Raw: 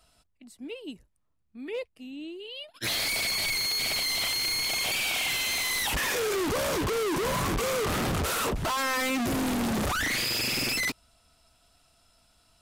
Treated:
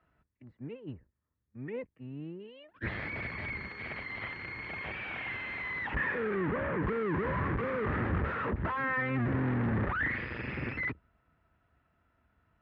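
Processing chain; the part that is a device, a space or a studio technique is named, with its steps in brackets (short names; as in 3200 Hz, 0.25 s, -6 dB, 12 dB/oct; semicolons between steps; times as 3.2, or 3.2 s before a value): 5.97–6.81 LPF 6300 Hz -> 2900 Hz 24 dB/oct; sub-octave bass pedal (octaver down 1 oct, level +2 dB; speaker cabinet 64–2000 Hz, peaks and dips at 72 Hz +4 dB, 700 Hz -6 dB, 1800 Hz +7 dB); 2.72–3.69 low shelf 380 Hz +5.5 dB; gain -4.5 dB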